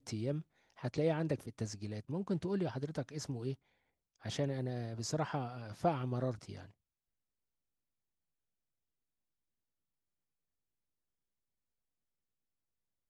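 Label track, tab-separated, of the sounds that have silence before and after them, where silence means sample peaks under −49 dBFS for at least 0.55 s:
4.240000	6.660000	sound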